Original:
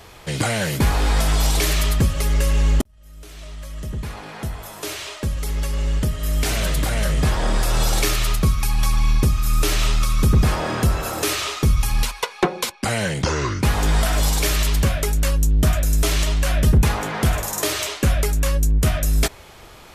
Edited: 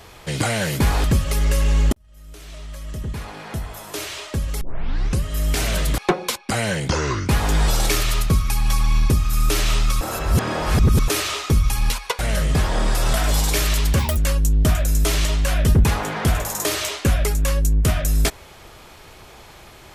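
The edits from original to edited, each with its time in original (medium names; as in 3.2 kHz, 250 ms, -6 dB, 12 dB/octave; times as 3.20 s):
1.04–1.93 s: delete
5.50 s: tape start 0.63 s
6.87–7.81 s: swap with 12.32–14.02 s
10.14–11.21 s: reverse
14.88–15.15 s: speed 150%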